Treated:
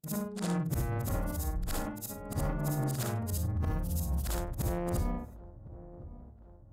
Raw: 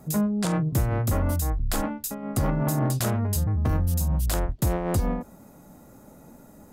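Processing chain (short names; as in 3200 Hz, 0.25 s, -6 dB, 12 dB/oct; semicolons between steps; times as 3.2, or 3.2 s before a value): short-time reversal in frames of 0.149 s; gate -45 dBFS, range -32 dB; dark delay 1.059 s, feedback 55%, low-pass 780 Hz, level -16 dB; gain -5 dB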